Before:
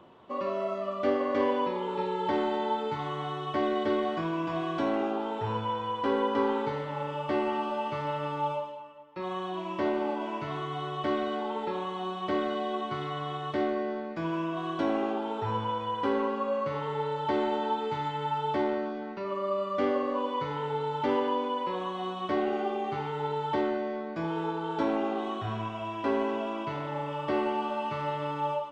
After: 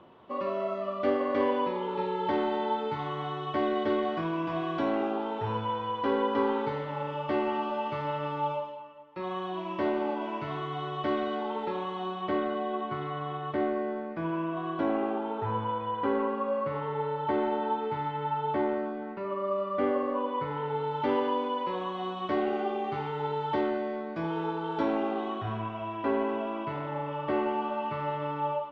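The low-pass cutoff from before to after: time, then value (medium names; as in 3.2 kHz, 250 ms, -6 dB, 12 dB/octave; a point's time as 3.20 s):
12.02 s 4.3 kHz
12.51 s 2.3 kHz
20.50 s 2.3 kHz
21.22 s 4.6 kHz
24.91 s 4.6 kHz
25.61 s 2.7 kHz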